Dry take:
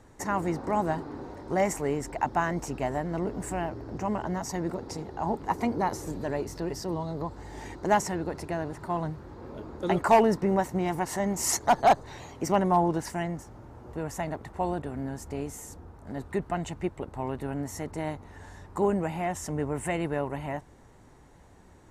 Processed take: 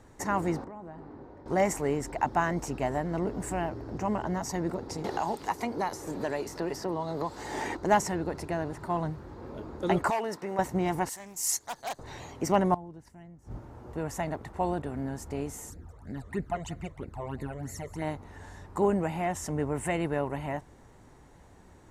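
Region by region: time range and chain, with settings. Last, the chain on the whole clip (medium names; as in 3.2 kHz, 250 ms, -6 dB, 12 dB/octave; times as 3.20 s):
0.64–1.46 s: low-pass 1.4 kHz 6 dB/octave + feedback comb 51 Hz, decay 1.6 s + compression 10:1, threshold -39 dBFS
5.04–7.77 s: bass shelf 250 Hz -10.5 dB + three bands compressed up and down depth 100%
10.10–10.59 s: high-pass 830 Hz 6 dB/octave + compression 2:1, threshold -30 dBFS
11.09–11.99 s: pre-emphasis filter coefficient 0.9 + loudspeaker Doppler distortion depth 0.21 ms
12.74–13.59 s: bass shelf 280 Hz +11.5 dB + inverted gate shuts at -24 dBFS, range -24 dB
15.70–18.02 s: phase shifter stages 12, 3.1 Hz, lowest notch 250–1100 Hz + delay 186 ms -18 dB
whole clip: none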